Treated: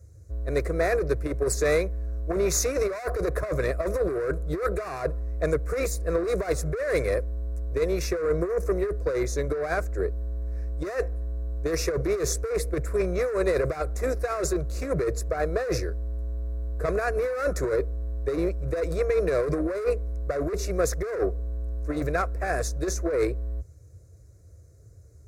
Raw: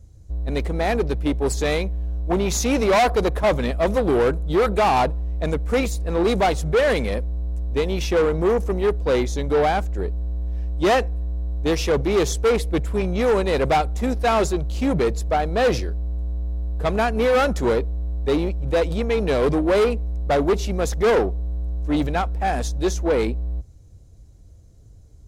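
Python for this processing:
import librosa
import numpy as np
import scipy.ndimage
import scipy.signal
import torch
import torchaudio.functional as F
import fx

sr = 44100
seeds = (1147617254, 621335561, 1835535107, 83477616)

y = scipy.signal.sosfilt(scipy.signal.butter(4, 70.0, 'highpass', fs=sr, output='sos'), x)
y = fx.over_compress(y, sr, threshold_db=-21.0, ratio=-0.5)
y = fx.fixed_phaser(y, sr, hz=850.0, stages=6)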